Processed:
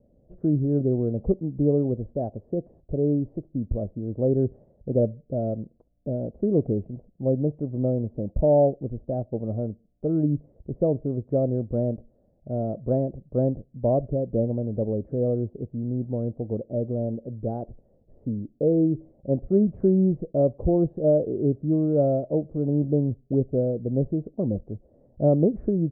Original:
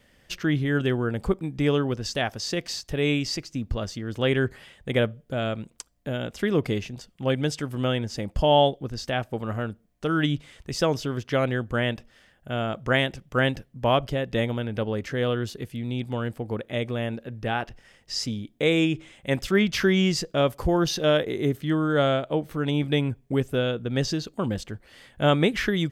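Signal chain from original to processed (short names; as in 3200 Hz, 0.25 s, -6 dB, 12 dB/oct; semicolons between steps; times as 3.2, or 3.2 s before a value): Chebyshev low-pass 630 Hz, order 4; gain +2 dB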